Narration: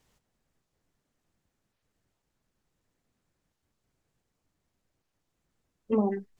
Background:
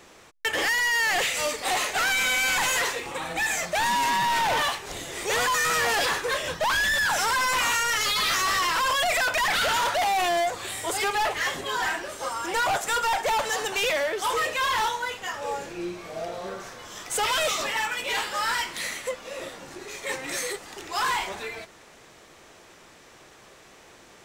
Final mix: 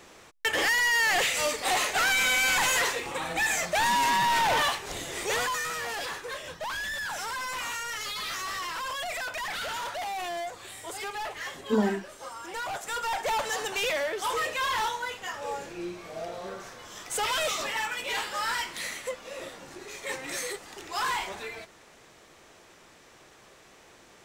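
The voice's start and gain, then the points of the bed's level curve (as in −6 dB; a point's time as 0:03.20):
5.80 s, +1.0 dB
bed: 0:05.18 −0.5 dB
0:05.76 −10 dB
0:12.69 −10 dB
0:13.31 −3.5 dB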